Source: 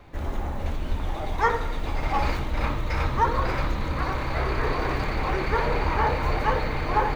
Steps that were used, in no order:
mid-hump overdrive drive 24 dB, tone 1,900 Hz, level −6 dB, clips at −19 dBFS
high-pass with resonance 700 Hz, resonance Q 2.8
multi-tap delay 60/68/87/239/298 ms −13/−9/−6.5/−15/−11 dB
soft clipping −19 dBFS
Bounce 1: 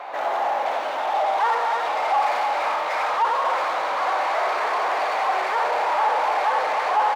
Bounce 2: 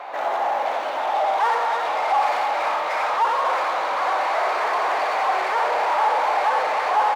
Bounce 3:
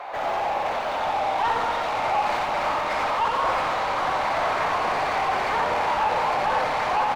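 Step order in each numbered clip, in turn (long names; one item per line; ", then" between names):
multi-tap delay, then mid-hump overdrive, then soft clipping, then high-pass with resonance
soft clipping, then multi-tap delay, then mid-hump overdrive, then high-pass with resonance
high-pass with resonance, then mid-hump overdrive, then soft clipping, then multi-tap delay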